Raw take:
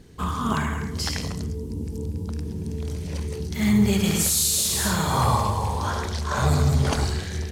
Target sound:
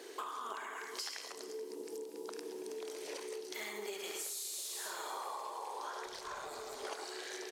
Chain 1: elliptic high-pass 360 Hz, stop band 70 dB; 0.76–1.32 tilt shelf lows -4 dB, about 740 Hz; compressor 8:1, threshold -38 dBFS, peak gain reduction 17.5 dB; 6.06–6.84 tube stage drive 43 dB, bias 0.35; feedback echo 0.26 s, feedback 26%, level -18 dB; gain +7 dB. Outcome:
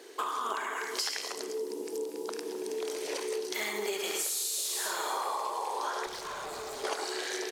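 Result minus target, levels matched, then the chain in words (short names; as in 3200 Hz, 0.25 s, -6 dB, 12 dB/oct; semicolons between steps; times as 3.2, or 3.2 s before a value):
compressor: peak gain reduction -9 dB; echo 0.168 s early
elliptic high-pass 360 Hz, stop band 70 dB; 0.76–1.32 tilt shelf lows -4 dB, about 740 Hz; compressor 8:1, threshold -48.5 dBFS, peak gain reduction 27 dB; 6.06–6.84 tube stage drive 43 dB, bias 0.35; feedback echo 0.428 s, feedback 26%, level -18 dB; gain +7 dB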